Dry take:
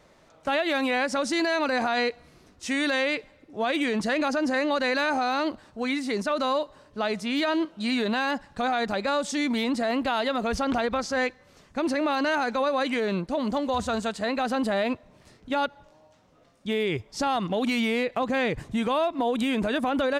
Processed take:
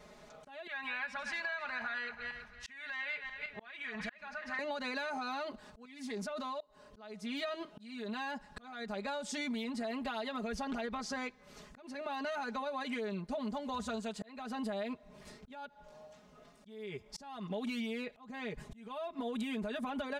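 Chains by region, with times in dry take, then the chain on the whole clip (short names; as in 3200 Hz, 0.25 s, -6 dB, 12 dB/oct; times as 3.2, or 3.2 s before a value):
0.67–4.59 regenerating reverse delay 0.164 s, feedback 42%, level -11 dB + EQ curve 110 Hz 0 dB, 300 Hz -21 dB, 1700 Hz +3 dB, 8300 Hz -17 dB
5.85–6.61 level quantiser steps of 19 dB + Doppler distortion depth 0.13 ms
whole clip: comb 4.8 ms, depth 95%; compressor 6:1, threshold -35 dBFS; auto swell 0.382 s; gain -1.5 dB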